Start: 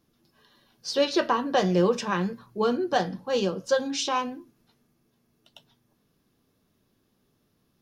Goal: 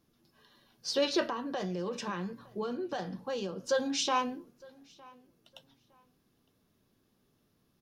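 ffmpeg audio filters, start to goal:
-filter_complex "[0:a]alimiter=limit=-17dB:level=0:latency=1:release=18,asettb=1/sr,asplit=3[a][b][c];[a]atrim=end=1.244[d];[b]atrim=start=1.24:end=3.68,asetpts=PTS-STARTPTS,afade=t=in:d=0.004:c=qsin,afade=t=out:st=2.436:d=0.004:c=qsin,acompressor=threshold=-31dB:ratio=4[e];[c]atrim=start=3.676[f];[d][e]acrossfade=d=0.004:c1=hsin:c2=qsin[g];[g][f]acrossfade=d=0.004:c1=qsin:c2=hsin,asplit=2[h][i];[i]adelay=910,lowpass=f=4k:p=1,volume=-24dB,asplit=2[j][k];[k]adelay=910,lowpass=f=4k:p=1,volume=0.25[l];[h][j][l]amix=inputs=3:normalize=0,volume=-2.5dB"

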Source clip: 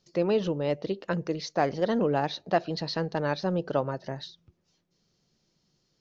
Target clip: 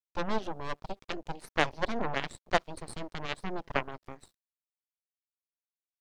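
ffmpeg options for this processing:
-af "aeval=exprs='val(0)*gte(abs(val(0)),0.00501)':c=same,aeval=exprs='0.299*(cos(1*acos(clip(val(0)/0.299,-1,1)))-cos(1*PI/2))+0.0944*(cos(3*acos(clip(val(0)/0.299,-1,1)))-cos(3*PI/2))+0.0211*(cos(4*acos(clip(val(0)/0.299,-1,1)))-cos(4*PI/2))+0.0473*(cos(6*acos(clip(val(0)/0.299,-1,1)))-cos(6*PI/2))':c=same,volume=2dB"

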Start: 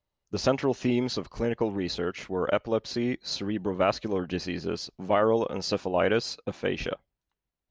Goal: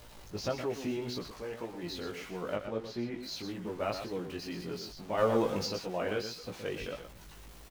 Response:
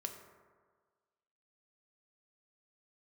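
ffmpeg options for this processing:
-filter_complex "[0:a]aeval=exprs='val(0)+0.5*0.0178*sgn(val(0))':c=same,asettb=1/sr,asplit=3[a][b][c];[a]atrim=end=2.554[d];[b]atrim=start=2.55:end=3.23,asetpts=PTS-STARTPTS,afade=t=in:d=0.004:c=qsin,afade=t=out:st=0.676:d=0.004:c=qsin,lowpass=f=2.9k:p=1[e];[c]atrim=start=3.226[f];[d][e]acrossfade=d=0.004:c1=hsin:c2=qsin[g];[g][f]acrossfade=d=0.004:c1=qsin:c2=hsin,asplit=3[h][i][j];[h]afade=t=out:st=5.17:d=0.02[k];[i]acontrast=76,afade=t=in:st=5.17:d=0.02,afade=t=out:st=5.65:d=0.02[l];[j]afade=t=in:st=5.65:d=0.02[m];[k][l][m]amix=inputs=3:normalize=0,aecho=1:1:120:0.376,flanger=delay=16.5:depth=2.9:speed=1.7,asettb=1/sr,asplit=3[n][o][p];[n]atrim=end=1.324[q];[o]atrim=start=1.32:end=1.83,asetpts=PTS-STARTPTS,afade=t=in:d=0.004:c=qsin,afade=t=out:st=0.506:d=0.004:c=qsin,lowshelf=f=350:g=-9[r];[p]atrim=start=1.826[s];[q][r]acrossfade=d=0.004:c1=hsin:c2=qsin[t];[t][s]acrossfade=d=0.004:c1=qsin:c2=hsin,volume=-7.5dB"

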